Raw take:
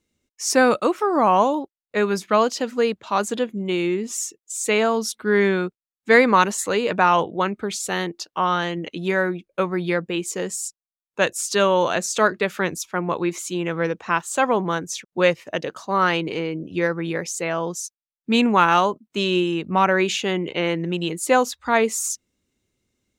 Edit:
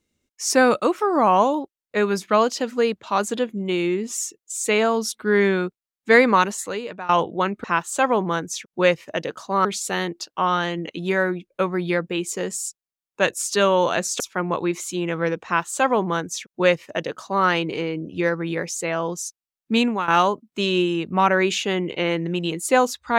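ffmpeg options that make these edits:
ffmpeg -i in.wav -filter_complex "[0:a]asplit=6[link_01][link_02][link_03][link_04][link_05][link_06];[link_01]atrim=end=7.09,asetpts=PTS-STARTPTS,afade=type=out:start_time=6.26:duration=0.83:silence=0.0944061[link_07];[link_02]atrim=start=7.09:end=7.642,asetpts=PTS-STARTPTS,afade=type=in:duration=0.004:curve=hsin:silence=0.0944061[link_08];[link_03]atrim=start=14.028:end=16.042[link_09];[link_04]atrim=start=7.638:end=12.192[link_10];[link_05]atrim=start=12.778:end=18.66,asetpts=PTS-STARTPTS,afade=type=out:start_time=5.552:duration=0.33:silence=0.177828[link_11];[link_06]atrim=start=18.66,asetpts=PTS-STARTPTS,afade=type=in:duration=0.004:curve=hsin:silence=0.177828[link_12];[link_07][link_08]concat=n=2:v=0:a=1[link_13];[link_13][link_09]acrossfade=duration=0.004:curve1=hsin:curve2=hsin[link_14];[link_14][link_10]acrossfade=duration=0.004:curve1=hsin:curve2=hsin[link_15];[link_11][link_12]concat=n=2:v=0:a=1[link_16];[link_15][link_16]acrossfade=duration=0.004:curve1=hsin:curve2=hsin" out.wav

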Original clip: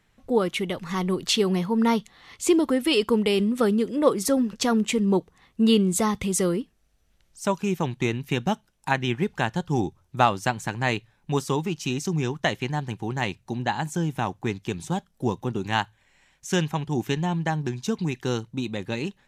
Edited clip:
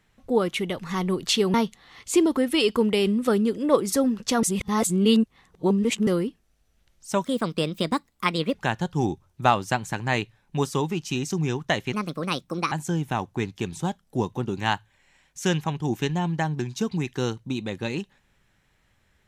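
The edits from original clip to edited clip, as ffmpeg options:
ffmpeg -i in.wav -filter_complex "[0:a]asplit=8[link_01][link_02][link_03][link_04][link_05][link_06][link_07][link_08];[link_01]atrim=end=1.542[link_09];[link_02]atrim=start=1.868:end=4.762[link_10];[link_03]atrim=start=4.758:end=6.402,asetpts=PTS-STARTPTS,areverse[link_11];[link_04]atrim=start=6.398:end=7.574[link_12];[link_05]atrim=start=7.57:end=9.29,asetpts=PTS-STARTPTS,asetrate=58212,aresample=44100[link_13];[link_06]atrim=start=9.286:end=12.674[link_14];[link_07]atrim=start=12.67:end=13.79,asetpts=PTS-STARTPTS,asetrate=62181,aresample=44100[link_15];[link_08]atrim=start=13.786[link_16];[link_09][link_10]acrossfade=duration=0.004:curve1=hsin:curve2=hsin[link_17];[link_17][link_11]acrossfade=duration=0.004:curve1=hsin:curve2=hsin[link_18];[link_18][link_12]acrossfade=duration=0.004:curve1=hsin:curve2=hsin[link_19];[link_19][link_13]acrossfade=duration=0.004:curve1=hsin:curve2=hsin[link_20];[link_20][link_14]acrossfade=duration=0.004:curve1=hsin:curve2=hsin[link_21];[link_21][link_15]acrossfade=duration=0.004:curve1=hsin:curve2=hsin[link_22];[link_22][link_16]acrossfade=duration=0.004:curve1=hsin:curve2=hsin" out.wav

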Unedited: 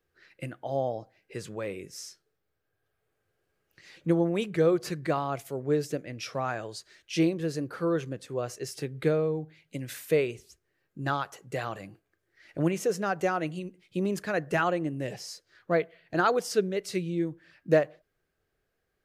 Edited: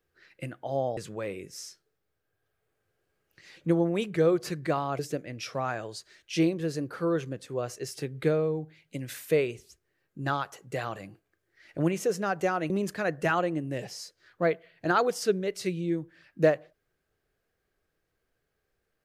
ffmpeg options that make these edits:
ffmpeg -i in.wav -filter_complex "[0:a]asplit=4[link_01][link_02][link_03][link_04];[link_01]atrim=end=0.972[link_05];[link_02]atrim=start=1.368:end=5.392[link_06];[link_03]atrim=start=5.788:end=13.502[link_07];[link_04]atrim=start=13.988[link_08];[link_05][link_06]acrossfade=duration=0.004:curve1=hsin:curve2=hsin[link_09];[link_09][link_07]acrossfade=duration=0.004:curve1=hsin:curve2=hsin[link_10];[link_10][link_08]acrossfade=duration=0.004:curve1=hsin:curve2=hsin" out.wav

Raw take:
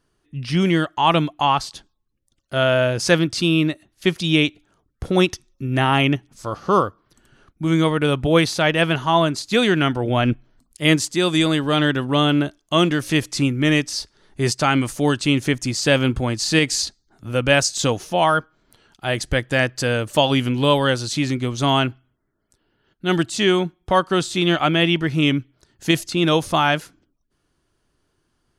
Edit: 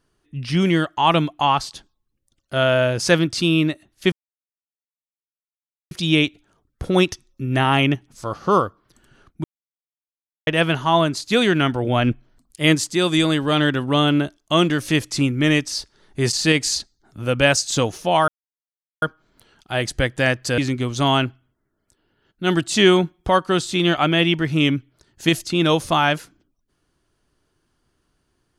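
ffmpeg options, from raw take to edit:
ffmpeg -i in.wav -filter_complex "[0:a]asplit=9[link_01][link_02][link_03][link_04][link_05][link_06][link_07][link_08][link_09];[link_01]atrim=end=4.12,asetpts=PTS-STARTPTS,afade=type=out:start_time=4.116:duration=0.004:curve=hsin,apad=pad_dur=1.79[link_10];[link_02]atrim=start=4.12:end=7.65,asetpts=PTS-STARTPTS,afade=type=in:duration=0.004:curve=hsin,afade=type=out:start_time=3.526:duration=0.004:curve=hsin[link_11];[link_03]atrim=start=7.65:end=8.68,asetpts=PTS-STARTPTS,volume=0[link_12];[link_04]atrim=start=8.68:end=14.542,asetpts=PTS-STARTPTS,afade=type=in:duration=0.004:curve=hsin[link_13];[link_05]atrim=start=16.398:end=18.35,asetpts=PTS-STARTPTS,afade=type=out:start_time=1.948:duration=0.004:curve=hsin,apad=pad_dur=0.74[link_14];[link_06]atrim=start=18.35:end=19.912,asetpts=PTS-STARTPTS,afade=type=in:duration=0.004:curve=hsin[link_15];[link_07]atrim=start=21.198:end=23.312[link_16];[link_08]atrim=start=23.308:end=23.912,asetpts=PTS-STARTPTS,volume=3.5dB[link_17];[link_09]atrim=start=23.908[link_18];[link_10][link_11][link_12][link_13]concat=n=4:v=0:a=1[link_19];[link_14][link_15]concat=n=2:v=0:a=1[link_20];[link_19][link_20]acrossfade=duration=0.004:curve1=hsin:curve2=hsin[link_21];[link_21][link_16]acrossfade=duration=0.004:curve1=hsin:curve2=hsin[link_22];[link_22][link_17]acrossfade=duration=0.004:curve1=hsin:curve2=hsin[link_23];[link_23][link_18]acrossfade=duration=0.004:curve1=hsin:curve2=hsin" out.wav

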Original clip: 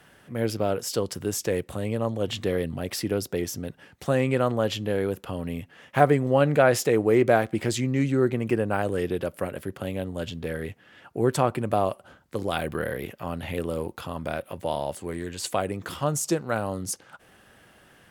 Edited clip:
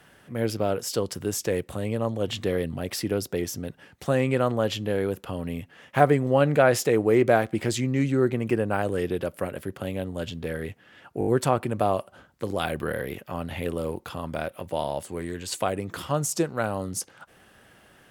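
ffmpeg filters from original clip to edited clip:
ffmpeg -i in.wav -filter_complex "[0:a]asplit=5[link_01][link_02][link_03][link_04][link_05];[link_01]atrim=end=11.212[link_06];[link_02]atrim=start=11.188:end=11.212[link_07];[link_03]atrim=start=11.188:end=11.212[link_08];[link_04]atrim=start=11.188:end=11.212[link_09];[link_05]atrim=start=11.188[link_10];[link_06][link_07]acrossfade=duration=0.004:curve1=hsin:curve2=hsin[link_11];[link_11][link_08]acrossfade=duration=0.004:curve1=hsin:curve2=hsin[link_12];[link_12][link_09]acrossfade=duration=0.004:curve1=hsin:curve2=hsin[link_13];[link_13][link_10]acrossfade=duration=0.004:curve1=hsin:curve2=hsin" out.wav

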